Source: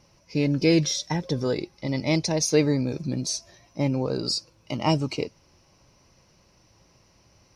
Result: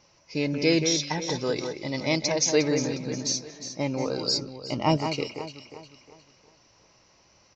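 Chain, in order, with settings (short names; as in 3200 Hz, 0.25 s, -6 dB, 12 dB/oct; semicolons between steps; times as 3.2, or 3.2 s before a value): low shelf 290 Hz -11 dB; on a send: echo with dull and thin repeats by turns 0.179 s, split 2500 Hz, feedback 61%, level -6 dB; on the sum: downsampling 16000 Hz; 4.37–4.97 tilt -2 dB/oct; gain +1.5 dB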